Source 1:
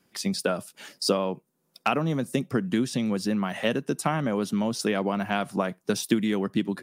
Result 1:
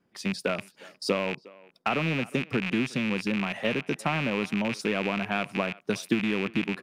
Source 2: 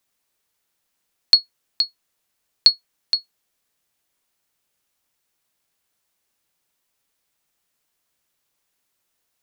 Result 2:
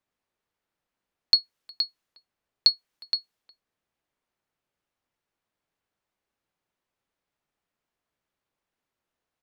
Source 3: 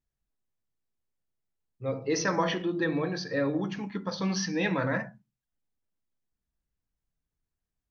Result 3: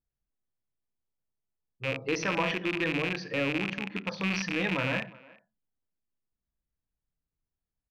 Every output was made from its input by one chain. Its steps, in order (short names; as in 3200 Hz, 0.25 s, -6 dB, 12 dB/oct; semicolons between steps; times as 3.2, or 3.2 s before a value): rattling part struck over -36 dBFS, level -16 dBFS; high shelf 6000 Hz -10 dB; speakerphone echo 0.36 s, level -21 dB; mismatched tape noise reduction decoder only; gain -2.5 dB